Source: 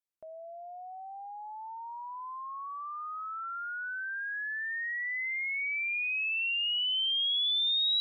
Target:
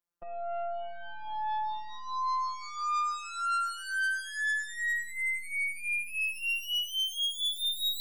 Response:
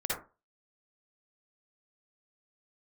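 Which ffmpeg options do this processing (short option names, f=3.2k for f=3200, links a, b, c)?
-af "highshelf=f=1.8k:t=q:w=1.5:g=-6,aeval=exprs='0.0282*(cos(1*acos(clip(val(0)/0.0282,-1,1)))-cos(1*PI/2))+0.00447*(cos(5*acos(clip(val(0)/0.0282,-1,1)))-cos(5*PI/2))+0.00224*(cos(6*acos(clip(val(0)/0.0282,-1,1)))-cos(6*PI/2))+0.00282*(cos(7*acos(clip(val(0)/0.0282,-1,1)))-cos(7*PI/2))+0.00447*(cos(8*acos(clip(val(0)/0.0282,-1,1)))-cos(8*PI/2))':c=same,afftfilt=real='hypot(re,im)*cos(PI*b)':imag='0':win_size=1024:overlap=0.75,volume=8dB"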